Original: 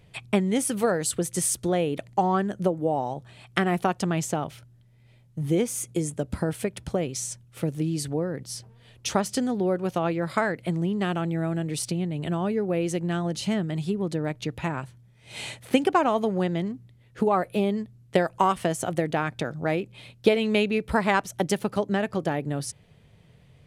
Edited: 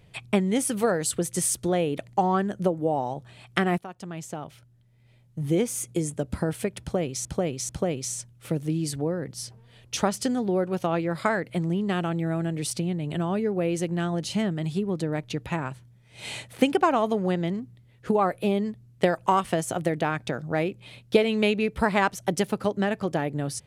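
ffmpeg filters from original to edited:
-filter_complex "[0:a]asplit=4[a][b][c][d];[a]atrim=end=3.78,asetpts=PTS-STARTPTS,afade=t=out:st=3.776:d=0.004:c=hsin:silence=0.125893[e];[b]atrim=start=3.78:end=7.252,asetpts=PTS-STARTPTS,afade=t=in:d=1.79:silence=0.125893[f];[c]atrim=start=6.808:end=7.252[g];[d]atrim=start=6.808[h];[e][f]concat=n=2:v=0:a=1[i];[i][g]acrossfade=d=0.004:c1=hsin:c2=hsin[j];[j][h]acrossfade=d=0.004:c1=hsin:c2=hsin"

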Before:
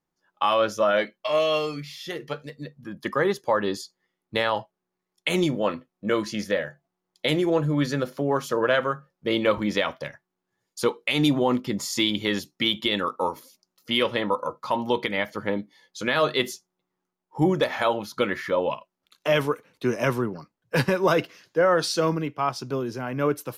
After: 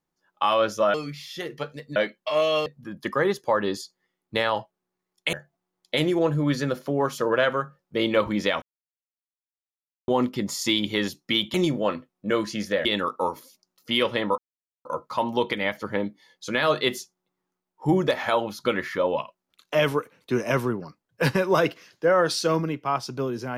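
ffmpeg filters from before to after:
-filter_complex "[0:a]asplit=10[a][b][c][d][e][f][g][h][i][j];[a]atrim=end=0.942[k];[b]atrim=start=1.638:end=2.662[l];[c]atrim=start=0.938:end=1.642[m];[d]atrim=start=2.658:end=5.332[n];[e]atrim=start=6.638:end=9.93,asetpts=PTS-STARTPTS,afade=t=out:st=3.288:d=0.004:c=hsin[o];[f]atrim=start=9.93:end=11.39,asetpts=PTS-STARTPTS,volume=0[p];[g]atrim=start=11.39:end=12.852,asetpts=PTS-STARTPTS,afade=t=in:d=0.004:c=hsin[q];[h]atrim=start=5.328:end=6.642[r];[i]atrim=start=12.848:end=14.38,asetpts=PTS-STARTPTS,afade=t=out:st=1.528:d=0.004:c=hsin,apad=pad_dur=0.47[s];[j]atrim=start=14.38,asetpts=PTS-STARTPTS,afade=t=in:d=0.004:c=hsin[t];[k][l]acrossfade=d=0.004:c1=hsin:c2=hsin[u];[u][m]acrossfade=d=0.004:c1=hsin:c2=hsin[v];[v][n]acrossfade=d=0.004:c1=hsin:c2=hsin[w];[o][p][q]concat=n=3:v=0:a=1[x];[w][x]acrossfade=d=0.004:c1=hsin:c2=hsin[y];[y][r]acrossfade=d=0.004:c1=hsin:c2=hsin[z];[s][t]concat=n=2:v=0:a=1[aa];[z][aa]acrossfade=d=0.004:c1=hsin:c2=hsin"

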